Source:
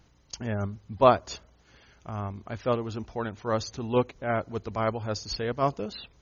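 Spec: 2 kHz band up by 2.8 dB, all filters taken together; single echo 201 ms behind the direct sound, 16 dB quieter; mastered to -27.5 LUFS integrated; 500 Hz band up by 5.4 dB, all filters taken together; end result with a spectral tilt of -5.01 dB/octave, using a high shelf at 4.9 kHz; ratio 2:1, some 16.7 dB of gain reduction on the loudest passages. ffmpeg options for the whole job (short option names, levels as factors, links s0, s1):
-af "equalizer=f=500:t=o:g=6.5,equalizer=f=2000:t=o:g=4,highshelf=f=4900:g=-3.5,acompressor=threshold=0.00891:ratio=2,aecho=1:1:201:0.158,volume=3.16"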